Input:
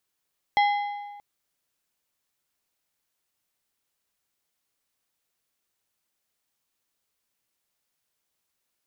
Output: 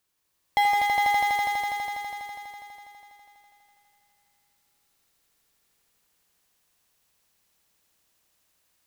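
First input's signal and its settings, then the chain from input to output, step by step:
metal hit plate, length 0.63 s, lowest mode 819 Hz, modes 5, decay 1.46 s, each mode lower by 7 dB, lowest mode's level -16.5 dB
low shelf 110 Hz +4.5 dB; in parallel at -10.5 dB: wrapped overs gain 26 dB; on the sum: swelling echo 82 ms, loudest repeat 5, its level -3.5 dB

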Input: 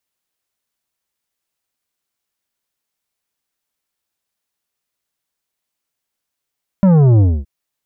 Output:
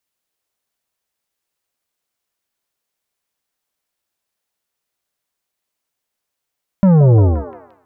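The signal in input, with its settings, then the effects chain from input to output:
sub drop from 200 Hz, over 0.62 s, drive 10 dB, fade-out 0.25 s, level -8 dB
delay with a stepping band-pass 0.175 s, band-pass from 520 Hz, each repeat 0.7 oct, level -0.5 dB

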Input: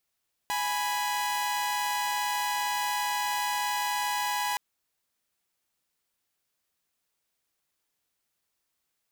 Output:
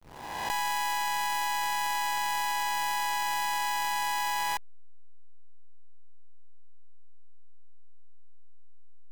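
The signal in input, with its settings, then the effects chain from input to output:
chord G#5/B5 saw, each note -27.5 dBFS 4.07 s
spectral swells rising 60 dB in 1.84 s; backlash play -31 dBFS

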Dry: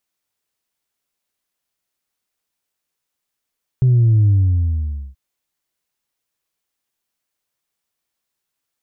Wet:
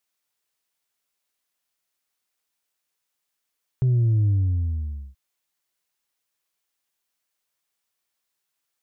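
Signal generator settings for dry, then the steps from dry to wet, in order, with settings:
sub drop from 130 Hz, over 1.33 s, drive 0.5 dB, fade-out 0.87 s, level -10 dB
low shelf 460 Hz -7 dB

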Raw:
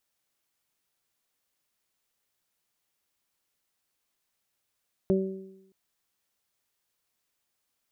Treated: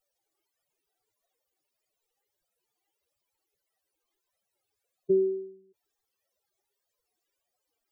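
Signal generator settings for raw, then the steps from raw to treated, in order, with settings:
additive tone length 0.62 s, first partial 191 Hz, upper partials 1/-8 dB, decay 0.86 s, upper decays 0.87/0.59 s, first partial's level -22 dB
spectral contrast raised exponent 3.4; flange 1.6 Hz, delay 1.5 ms, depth 1.2 ms, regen +14%; band shelf 510 Hz +8.5 dB

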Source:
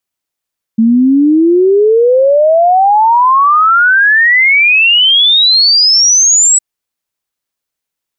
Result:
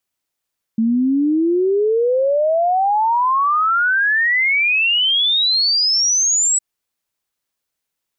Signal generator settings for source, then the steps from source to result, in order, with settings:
log sweep 220 Hz -> 7900 Hz 5.81 s -4.5 dBFS
limiter -13 dBFS

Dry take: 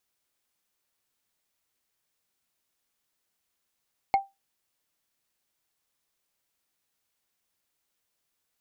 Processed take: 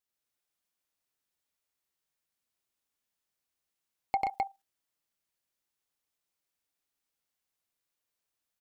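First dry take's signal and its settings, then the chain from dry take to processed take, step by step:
wood hit, lowest mode 786 Hz, decay 0.20 s, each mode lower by 10 dB, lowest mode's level -14.5 dB
level quantiser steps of 13 dB; on a send: loudspeakers at several distances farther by 32 m -2 dB, 44 m -5 dB, 89 m -2 dB

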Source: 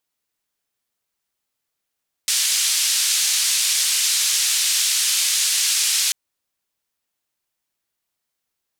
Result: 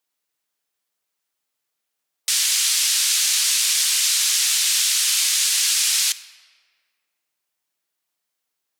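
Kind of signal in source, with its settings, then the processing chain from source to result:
noise band 3100–8600 Hz, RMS -19.5 dBFS 3.84 s
shoebox room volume 3000 m³, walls mixed, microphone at 0.47 m; spectral gate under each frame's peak -30 dB strong; HPF 280 Hz 6 dB/oct

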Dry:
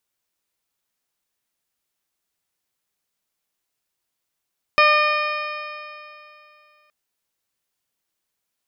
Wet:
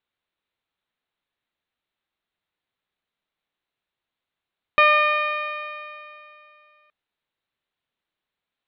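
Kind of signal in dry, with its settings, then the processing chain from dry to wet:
stretched partials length 2.12 s, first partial 600 Hz, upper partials 4/-2.5/3/-10/-13/-14/-7 dB, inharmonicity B 0.0022, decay 2.68 s, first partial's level -18 dB
elliptic low-pass 3900 Hz, stop band 40 dB

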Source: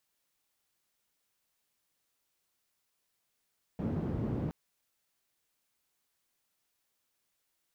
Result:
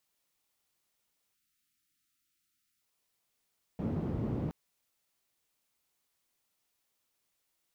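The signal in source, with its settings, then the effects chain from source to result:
noise band 97–190 Hz, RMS -34 dBFS 0.72 s
spectral delete 1.34–2.81, 360–1200 Hz; bell 1600 Hz -3.5 dB 0.25 oct

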